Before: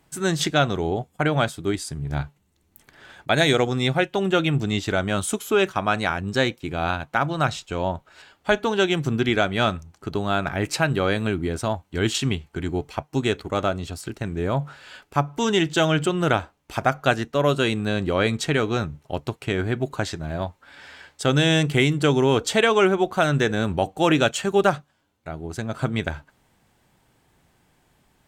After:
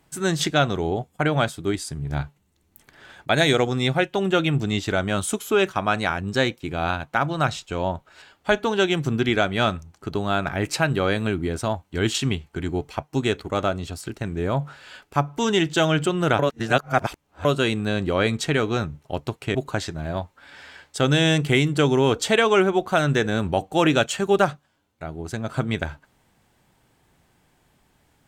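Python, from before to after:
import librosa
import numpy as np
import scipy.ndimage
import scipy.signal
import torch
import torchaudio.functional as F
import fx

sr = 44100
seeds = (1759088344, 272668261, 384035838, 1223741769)

y = fx.edit(x, sr, fx.reverse_span(start_s=16.39, length_s=1.06),
    fx.cut(start_s=19.55, length_s=0.25), tone=tone)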